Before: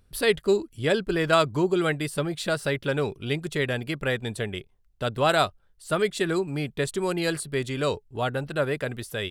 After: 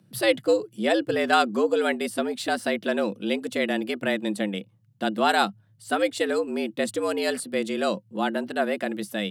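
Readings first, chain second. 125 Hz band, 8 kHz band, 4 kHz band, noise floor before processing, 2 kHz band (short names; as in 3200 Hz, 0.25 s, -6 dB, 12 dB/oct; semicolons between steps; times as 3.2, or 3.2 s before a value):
-12.5 dB, 0.0 dB, +0.5 dB, -62 dBFS, +1.0 dB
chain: frequency shift +100 Hz; small resonant body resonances 200/330/2900 Hz, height 8 dB, ringing for 85 ms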